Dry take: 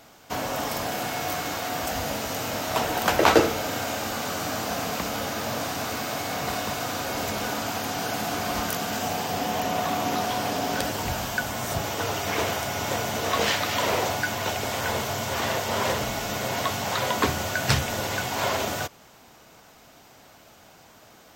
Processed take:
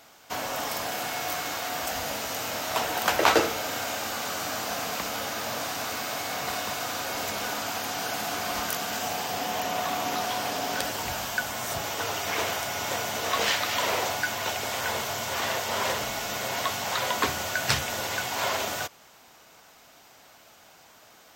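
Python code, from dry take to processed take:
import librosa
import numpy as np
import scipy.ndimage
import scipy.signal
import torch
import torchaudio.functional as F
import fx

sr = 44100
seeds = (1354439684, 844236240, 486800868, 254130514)

y = fx.low_shelf(x, sr, hz=460.0, db=-9.5)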